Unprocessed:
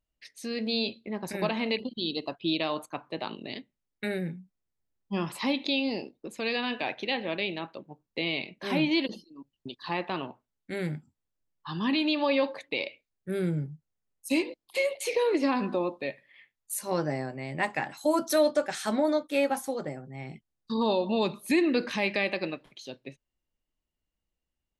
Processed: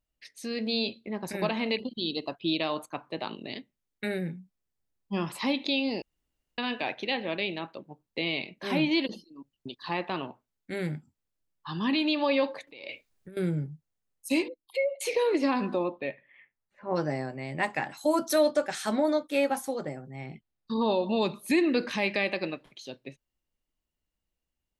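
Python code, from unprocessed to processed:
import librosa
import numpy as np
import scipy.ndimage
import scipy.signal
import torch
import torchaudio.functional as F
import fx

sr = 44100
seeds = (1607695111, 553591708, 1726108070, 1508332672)

y = fx.over_compress(x, sr, threshold_db=-44.0, ratio=-1.0, at=(12.67, 13.37))
y = fx.spec_expand(y, sr, power=1.9, at=(14.48, 15.01))
y = fx.lowpass(y, sr, hz=fx.line((15.83, 4000.0), (16.95, 1600.0)), slope=24, at=(15.83, 16.95), fade=0.02)
y = fx.lowpass(y, sr, hz=4100.0, slope=12, at=(20.26, 21.03))
y = fx.edit(y, sr, fx.room_tone_fill(start_s=6.02, length_s=0.56), tone=tone)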